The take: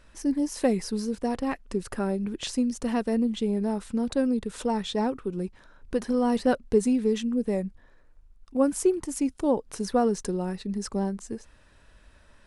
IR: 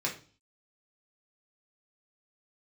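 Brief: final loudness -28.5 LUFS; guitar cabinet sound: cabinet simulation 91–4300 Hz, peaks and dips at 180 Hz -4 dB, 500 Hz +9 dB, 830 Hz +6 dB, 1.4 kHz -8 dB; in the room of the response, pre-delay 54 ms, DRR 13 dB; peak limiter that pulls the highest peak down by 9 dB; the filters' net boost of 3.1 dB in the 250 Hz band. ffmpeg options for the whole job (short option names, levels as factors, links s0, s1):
-filter_complex "[0:a]equalizer=f=250:t=o:g=4,alimiter=limit=0.133:level=0:latency=1,asplit=2[s0][s1];[1:a]atrim=start_sample=2205,adelay=54[s2];[s1][s2]afir=irnorm=-1:irlink=0,volume=0.112[s3];[s0][s3]amix=inputs=2:normalize=0,highpass=91,equalizer=f=180:t=q:w=4:g=-4,equalizer=f=500:t=q:w=4:g=9,equalizer=f=830:t=q:w=4:g=6,equalizer=f=1400:t=q:w=4:g=-8,lowpass=f=4300:w=0.5412,lowpass=f=4300:w=1.3066,volume=0.75"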